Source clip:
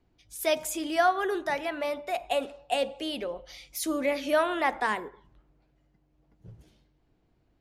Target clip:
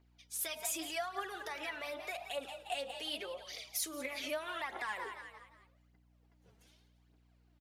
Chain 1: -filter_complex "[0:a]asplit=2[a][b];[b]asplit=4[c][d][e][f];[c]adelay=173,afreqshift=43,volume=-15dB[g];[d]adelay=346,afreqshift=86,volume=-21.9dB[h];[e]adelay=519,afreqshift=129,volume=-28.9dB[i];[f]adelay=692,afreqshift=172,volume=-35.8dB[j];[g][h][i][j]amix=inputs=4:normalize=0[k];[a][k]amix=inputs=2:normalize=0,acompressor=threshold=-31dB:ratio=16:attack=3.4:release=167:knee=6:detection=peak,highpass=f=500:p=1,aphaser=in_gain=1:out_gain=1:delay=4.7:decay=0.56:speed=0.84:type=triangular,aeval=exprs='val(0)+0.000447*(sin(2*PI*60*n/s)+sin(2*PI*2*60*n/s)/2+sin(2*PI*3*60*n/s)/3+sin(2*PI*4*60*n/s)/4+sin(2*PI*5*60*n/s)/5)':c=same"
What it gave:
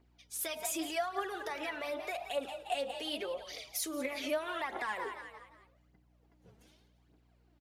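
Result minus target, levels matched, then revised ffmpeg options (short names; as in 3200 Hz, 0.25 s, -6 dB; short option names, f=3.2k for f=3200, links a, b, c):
500 Hz band +3.0 dB
-filter_complex "[0:a]asplit=2[a][b];[b]asplit=4[c][d][e][f];[c]adelay=173,afreqshift=43,volume=-15dB[g];[d]adelay=346,afreqshift=86,volume=-21.9dB[h];[e]adelay=519,afreqshift=129,volume=-28.9dB[i];[f]adelay=692,afreqshift=172,volume=-35.8dB[j];[g][h][i][j]amix=inputs=4:normalize=0[k];[a][k]amix=inputs=2:normalize=0,acompressor=threshold=-31dB:ratio=16:attack=3.4:release=167:knee=6:detection=peak,highpass=f=1.3k:p=1,aphaser=in_gain=1:out_gain=1:delay=4.7:decay=0.56:speed=0.84:type=triangular,aeval=exprs='val(0)+0.000447*(sin(2*PI*60*n/s)+sin(2*PI*2*60*n/s)/2+sin(2*PI*3*60*n/s)/3+sin(2*PI*4*60*n/s)/4+sin(2*PI*5*60*n/s)/5)':c=same"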